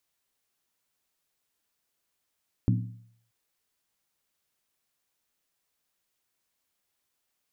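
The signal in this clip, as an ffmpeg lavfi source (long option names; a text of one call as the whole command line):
ffmpeg -f lavfi -i "aevalsrc='0.112*pow(10,-3*t/0.64)*sin(2*PI*115*t)+0.0708*pow(10,-3*t/0.507)*sin(2*PI*183.3*t)+0.0447*pow(10,-3*t/0.438)*sin(2*PI*245.6*t)+0.0282*pow(10,-3*t/0.422)*sin(2*PI*264*t)+0.0178*pow(10,-3*t/0.393)*sin(2*PI*305.1*t)':duration=0.63:sample_rate=44100" out.wav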